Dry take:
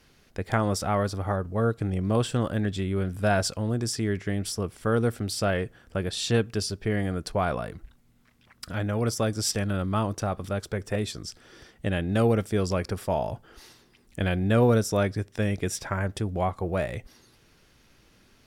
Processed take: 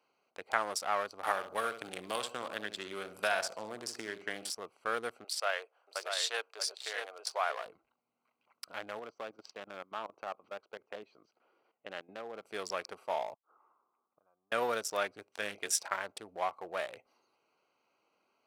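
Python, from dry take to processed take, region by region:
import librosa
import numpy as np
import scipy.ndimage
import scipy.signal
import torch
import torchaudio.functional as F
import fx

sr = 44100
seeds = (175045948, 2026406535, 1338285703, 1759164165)

y = fx.chain(x, sr, fx.echo_feedback(ms=66, feedback_pct=34, wet_db=-9.0),
    fx.band_squash(depth_pct=100), at=(1.23, 4.5))
y = fx.chain(y, sr, fx.highpass(hz=490.0, slope=24),
    fx.echo_single(ms=634, db=-5.0), at=(5.24, 7.66))
y = fx.chain(y, sr, fx.level_steps(step_db=14),
    fx.bandpass_edges(low_hz=120.0, high_hz=7600.0),
    fx.air_absorb(metres=190.0), at=(8.99, 12.45))
y = fx.chain(y, sr, fx.gate_flip(shuts_db=-31.0, range_db=-26),
    fx.leveller(passes=1),
    fx.ladder_lowpass(hz=1300.0, resonance_pct=70), at=(13.34, 14.52))
y = fx.chain(y, sr, fx.high_shelf(hz=2500.0, db=4.5),
    fx.doubler(ms=29.0, db=-9), at=(15.3, 15.96))
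y = fx.wiener(y, sr, points=25)
y = scipy.signal.sosfilt(scipy.signal.butter(2, 920.0, 'highpass', fs=sr, output='sos'), y)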